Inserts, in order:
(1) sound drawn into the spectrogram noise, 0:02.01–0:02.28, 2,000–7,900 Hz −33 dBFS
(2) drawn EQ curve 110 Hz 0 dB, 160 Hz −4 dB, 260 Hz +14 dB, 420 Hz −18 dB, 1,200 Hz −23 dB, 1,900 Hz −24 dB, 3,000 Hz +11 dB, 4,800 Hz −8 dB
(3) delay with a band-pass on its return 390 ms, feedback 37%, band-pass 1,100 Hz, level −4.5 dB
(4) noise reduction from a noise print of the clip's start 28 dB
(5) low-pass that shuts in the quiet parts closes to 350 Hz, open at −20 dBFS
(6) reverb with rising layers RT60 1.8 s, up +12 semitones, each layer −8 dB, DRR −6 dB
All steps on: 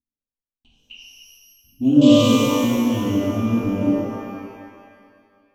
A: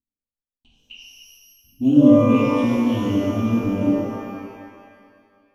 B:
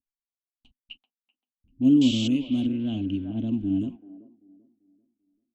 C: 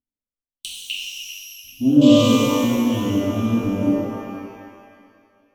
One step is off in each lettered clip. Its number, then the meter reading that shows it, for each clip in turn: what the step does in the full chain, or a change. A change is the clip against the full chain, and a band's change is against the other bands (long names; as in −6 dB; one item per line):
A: 1, 4 kHz band −11.0 dB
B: 6, 500 Hz band −11.0 dB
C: 5, 8 kHz band +2.0 dB